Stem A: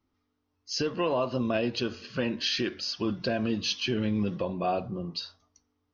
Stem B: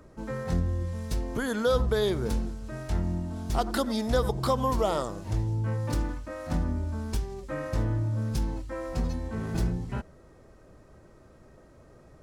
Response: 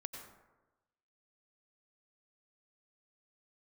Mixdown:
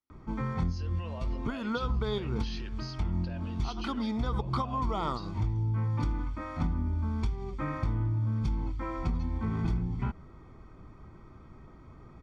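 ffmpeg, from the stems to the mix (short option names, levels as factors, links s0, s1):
-filter_complex "[0:a]lowshelf=f=380:g=-12,volume=0.224,asplit=2[s0][s1];[1:a]lowpass=3400,aecho=1:1:0.9:0.7,adelay=100,volume=1.12[s2];[s1]apad=whole_len=543638[s3];[s2][s3]sidechaincompress=threshold=0.00447:ratio=8:attack=6.5:release=207[s4];[s0][s4]amix=inputs=2:normalize=0,acompressor=threshold=0.0447:ratio=4"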